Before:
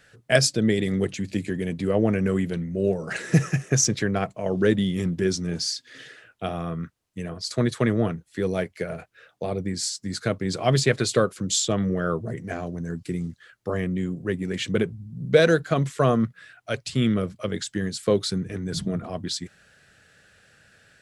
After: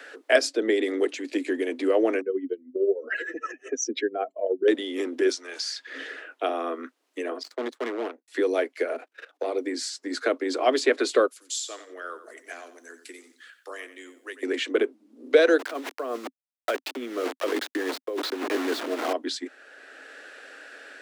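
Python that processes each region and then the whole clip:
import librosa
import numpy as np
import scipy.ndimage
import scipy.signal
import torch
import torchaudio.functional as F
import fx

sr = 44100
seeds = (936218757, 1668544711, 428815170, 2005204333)

y = fx.chain(x, sr, fx.spec_expand(power=2.0),
    fx.peak_eq(hz=3000.0, db=13.5, octaves=0.33),
    fx.tremolo(hz=13.0, depth=0.62), at=(2.21, 4.68))
y = fx.chain(y, sr, fx.highpass(hz=860.0, slope=12),
    fx.band_squash(depth_pct=100), at=(5.29, 5.87))
y = fx.chain(y, sr, fx.power_curve(exponent=2.0),
    fx.clip_hard(threshold_db=-25.5), at=(7.43, 8.28))
y = fx.chain(y, sr, fx.leveller(passes=1),
    fx.level_steps(step_db=16), at=(8.95, 9.56))
y = fx.chain(y, sr, fx.differentiator(),
    fx.echo_feedback(ms=90, feedback_pct=24, wet_db=-13.0), at=(11.27, 14.43))
y = fx.chain(y, sr, fx.lowpass(hz=3200.0, slope=12),
    fx.quant_dither(seeds[0], bits=6, dither='none'),
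    fx.over_compress(threshold_db=-29.0, ratio=-1.0), at=(15.59, 19.13))
y = scipy.signal.sosfilt(scipy.signal.butter(16, 260.0, 'highpass', fs=sr, output='sos'), y)
y = fx.high_shelf(y, sr, hz=4300.0, db=-11.0)
y = fx.band_squash(y, sr, depth_pct=40)
y = y * librosa.db_to_amplitude(4.0)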